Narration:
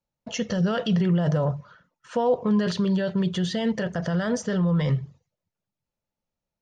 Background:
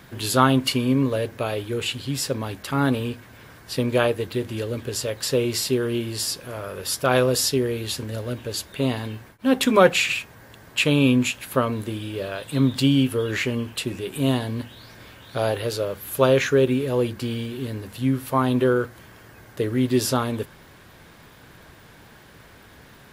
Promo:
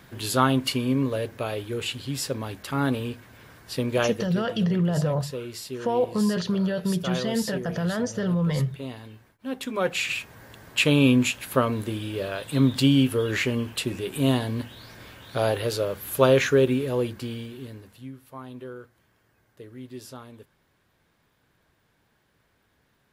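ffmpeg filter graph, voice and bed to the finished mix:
-filter_complex "[0:a]adelay=3700,volume=-1.5dB[a];[1:a]volume=8.5dB,afade=t=out:st=4.02:d=0.43:silence=0.354813,afade=t=in:st=9.78:d=0.6:silence=0.251189,afade=t=out:st=16.47:d=1.65:silence=0.112202[b];[a][b]amix=inputs=2:normalize=0"

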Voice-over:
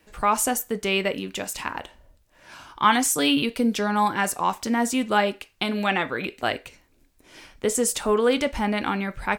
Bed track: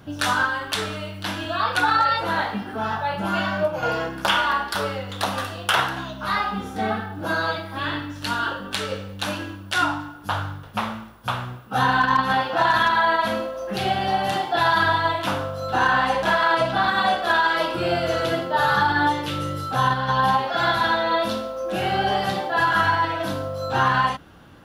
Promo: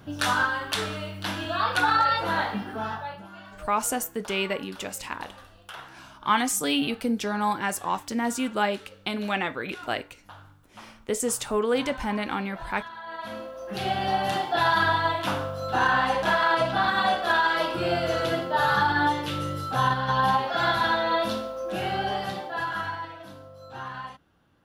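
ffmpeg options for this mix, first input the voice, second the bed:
-filter_complex "[0:a]adelay=3450,volume=-4dB[a];[1:a]volume=16dB,afade=t=out:st=2.65:d=0.63:silence=0.112202,afade=t=in:st=13.04:d=1.05:silence=0.11885,afade=t=out:st=21.33:d=1.91:silence=0.188365[b];[a][b]amix=inputs=2:normalize=0"

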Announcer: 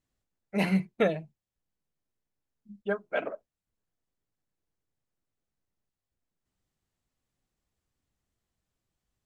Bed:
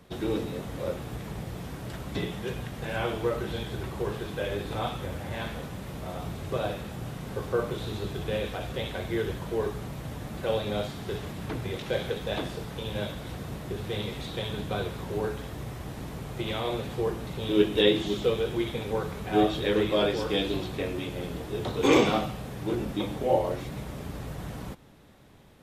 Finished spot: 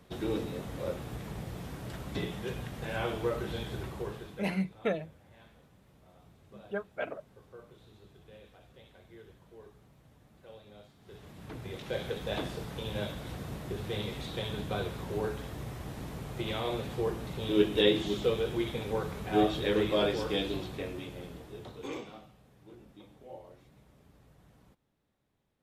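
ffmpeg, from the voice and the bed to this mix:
-filter_complex "[0:a]adelay=3850,volume=-5.5dB[a];[1:a]volume=17dB,afade=t=out:st=3.76:d=0.81:silence=0.1,afade=t=in:st=10.99:d=1.38:silence=0.0944061,afade=t=out:st=20.11:d=1.94:silence=0.0944061[b];[a][b]amix=inputs=2:normalize=0"

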